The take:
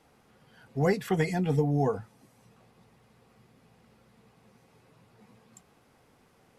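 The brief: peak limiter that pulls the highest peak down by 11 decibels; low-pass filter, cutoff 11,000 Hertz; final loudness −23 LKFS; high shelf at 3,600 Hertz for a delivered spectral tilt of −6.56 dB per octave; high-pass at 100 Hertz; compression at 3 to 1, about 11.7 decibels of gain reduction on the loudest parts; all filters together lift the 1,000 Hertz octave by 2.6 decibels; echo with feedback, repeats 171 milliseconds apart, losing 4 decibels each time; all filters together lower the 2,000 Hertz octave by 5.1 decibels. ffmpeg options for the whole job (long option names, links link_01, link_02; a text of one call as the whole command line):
ffmpeg -i in.wav -af "highpass=100,lowpass=11000,equalizer=frequency=1000:width_type=o:gain=5.5,equalizer=frequency=2000:width_type=o:gain=-6,highshelf=frequency=3600:gain=-6.5,acompressor=threshold=-37dB:ratio=3,alimiter=level_in=10.5dB:limit=-24dB:level=0:latency=1,volume=-10.5dB,aecho=1:1:171|342|513|684|855|1026|1197|1368|1539:0.631|0.398|0.25|0.158|0.0994|0.0626|0.0394|0.0249|0.0157,volume=20dB" out.wav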